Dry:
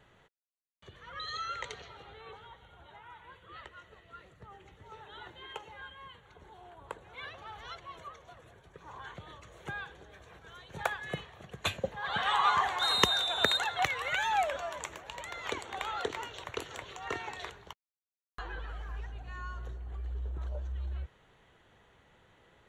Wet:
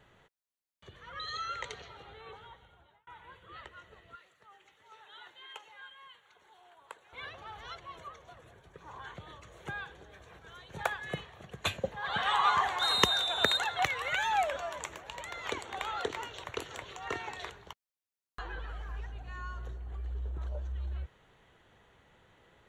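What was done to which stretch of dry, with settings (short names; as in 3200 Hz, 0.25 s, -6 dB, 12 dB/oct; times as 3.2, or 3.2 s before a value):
2.49–3.07 fade out
4.15–7.13 HPF 1500 Hz 6 dB/oct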